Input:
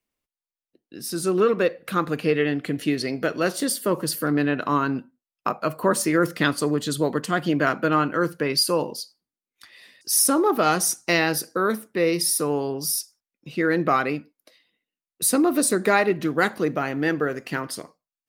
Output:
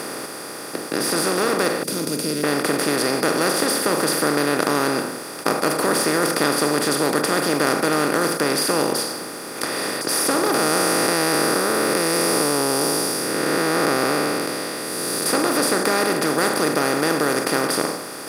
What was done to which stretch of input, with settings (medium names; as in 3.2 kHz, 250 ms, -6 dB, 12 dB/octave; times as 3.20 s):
1.83–2.44 s: elliptic band-stop 230–5700 Hz, stop band 60 dB
10.54–15.26 s: spectral blur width 339 ms
whole clip: spectral levelling over time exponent 0.2; trim -8 dB